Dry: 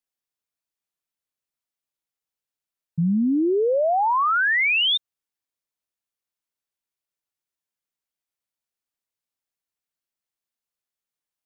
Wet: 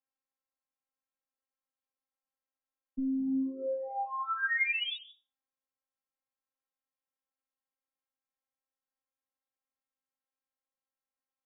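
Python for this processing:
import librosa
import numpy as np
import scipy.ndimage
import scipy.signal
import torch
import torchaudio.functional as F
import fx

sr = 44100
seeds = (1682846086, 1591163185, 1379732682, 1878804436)

y = scipy.signal.sosfilt(scipy.signal.butter(2, 1200.0, 'lowpass', fs=sr, output='sos'), x)
y = fx.low_shelf(y, sr, hz=320.0, db=-11.5)
y = fx.over_compress(y, sr, threshold_db=-30.0, ratio=-1.0)
y = y + 0.31 * np.pad(y, (int(6.2 * sr / 1000.0), 0))[:len(y)]
y = fx.rev_freeverb(y, sr, rt60_s=0.4, hf_ratio=0.7, predelay_ms=100, drr_db=16.5)
y = fx.robotise(y, sr, hz=266.0)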